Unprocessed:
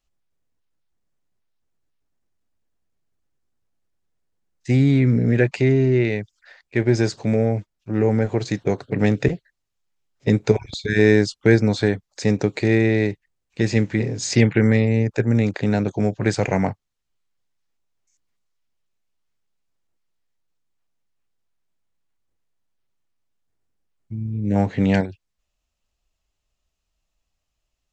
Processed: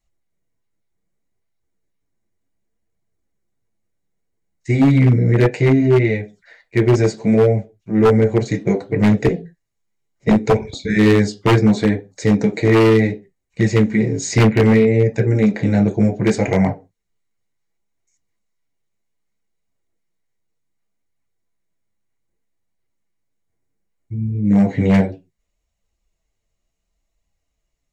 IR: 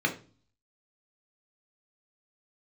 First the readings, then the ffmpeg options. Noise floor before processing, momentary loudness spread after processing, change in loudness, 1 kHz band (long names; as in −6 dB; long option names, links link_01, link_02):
−78 dBFS, 9 LU, +4.0 dB, +6.5 dB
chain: -filter_complex "[0:a]asplit=2[link_01][link_02];[1:a]atrim=start_sample=2205,afade=type=out:start_time=0.33:duration=0.01,atrim=end_sample=14994,asetrate=66150,aresample=44100[link_03];[link_02][link_03]afir=irnorm=-1:irlink=0,volume=-8.5dB[link_04];[link_01][link_04]amix=inputs=2:normalize=0,flanger=delay=0.9:depth=8.7:regen=-37:speed=0.66:shape=triangular,aeval=exprs='0.282*(abs(mod(val(0)/0.282+3,4)-2)-1)':channel_layout=same,volume=5dB"